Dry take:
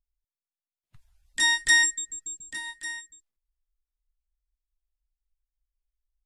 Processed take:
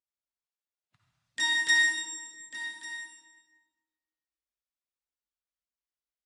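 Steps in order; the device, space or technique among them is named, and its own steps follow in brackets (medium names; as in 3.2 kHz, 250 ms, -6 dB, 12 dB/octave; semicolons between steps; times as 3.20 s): supermarket ceiling speaker (band-pass 220–6800 Hz; reverberation RT60 1.3 s, pre-delay 49 ms, DRR 0 dB); trim -4.5 dB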